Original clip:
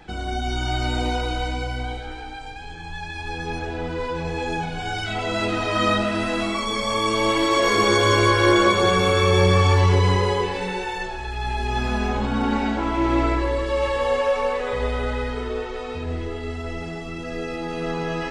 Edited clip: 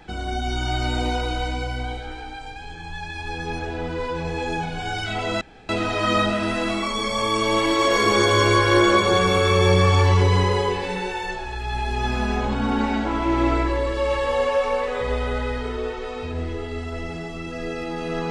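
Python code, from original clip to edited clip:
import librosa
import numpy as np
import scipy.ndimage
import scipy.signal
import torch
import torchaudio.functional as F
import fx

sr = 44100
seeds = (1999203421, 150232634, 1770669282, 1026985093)

y = fx.edit(x, sr, fx.insert_room_tone(at_s=5.41, length_s=0.28), tone=tone)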